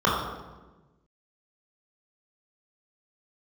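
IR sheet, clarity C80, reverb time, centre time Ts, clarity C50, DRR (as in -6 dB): 3.0 dB, 1.2 s, 71 ms, 0.5 dB, -6.0 dB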